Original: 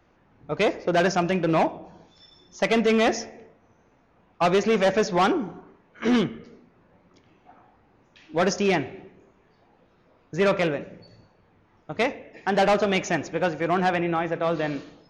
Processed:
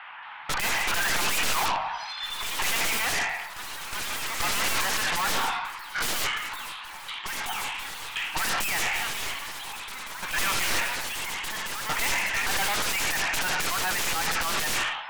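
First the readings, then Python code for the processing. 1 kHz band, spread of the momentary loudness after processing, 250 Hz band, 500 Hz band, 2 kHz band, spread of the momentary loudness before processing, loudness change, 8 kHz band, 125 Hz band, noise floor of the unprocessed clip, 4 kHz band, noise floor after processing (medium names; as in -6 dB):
-2.0 dB, 10 LU, -16.5 dB, -15.5 dB, +4.0 dB, 11 LU, -3.0 dB, +11.5 dB, -11.0 dB, -62 dBFS, +7.5 dB, -40 dBFS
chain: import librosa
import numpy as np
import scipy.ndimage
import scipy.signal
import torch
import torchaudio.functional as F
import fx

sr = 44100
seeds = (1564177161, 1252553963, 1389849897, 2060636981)

p1 = scipy.signal.sosfilt(scipy.signal.ellip(3, 1.0, 40, [860.0, 3100.0], 'bandpass', fs=sr, output='sos'), x)
p2 = fx.high_shelf(p1, sr, hz=2300.0, db=8.0)
p3 = fx.rider(p2, sr, range_db=10, speed_s=0.5)
p4 = p2 + F.gain(torch.from_numpy(p3), 1.0).numpy()
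p5 = fx.tube_stage(p4, sr, drive_db=31.0, bias=0.65)
p6 = fx.fold_sine(p5, sr, drive_db=13, ceiling_db=-26.5)
p7 = fx.echo_pitch(p6, sr, ms=225, semitones=3, count=3, db_per_echo=-6.0)
y = F.gain(torch.from_numpy(p7), 3.0).numpy()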